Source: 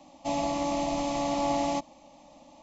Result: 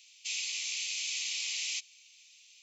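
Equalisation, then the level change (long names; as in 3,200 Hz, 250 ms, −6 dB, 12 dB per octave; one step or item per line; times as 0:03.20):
elliptic high-pass filter 2,400 Hz, stop band 80 dB
+7.5 dB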